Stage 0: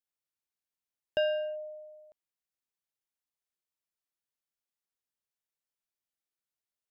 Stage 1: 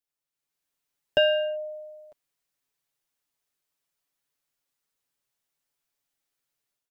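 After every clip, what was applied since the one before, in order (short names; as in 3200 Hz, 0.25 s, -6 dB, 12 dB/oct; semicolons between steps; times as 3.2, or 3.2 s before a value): AGC gain up to 8 dB; comb 7.1 ms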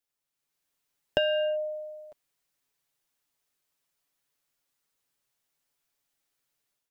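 compressor 6:1, threshold -25 dBFS, peak gain reduction 8.5 dB; gain +2.5 dB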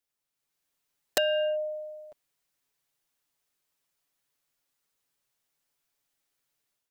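wrapped overs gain 16 dB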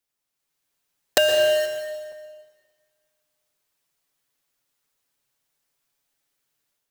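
in parallel at -3.5 dB: bit-crush 5-bit; on the sum: plate-style reverb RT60 1.6 s, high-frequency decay 0.9×, pre-delay 0.105 s, DRR 6 dB; gain +3 dB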